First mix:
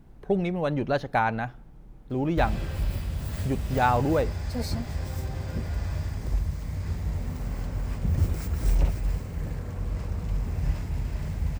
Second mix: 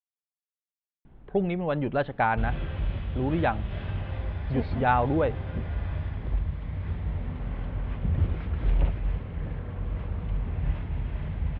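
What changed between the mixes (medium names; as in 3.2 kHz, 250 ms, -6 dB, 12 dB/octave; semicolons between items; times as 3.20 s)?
speech: entry +1.05 s; master: add elliptic low-pass 3.4 kHz, stop band 60 dB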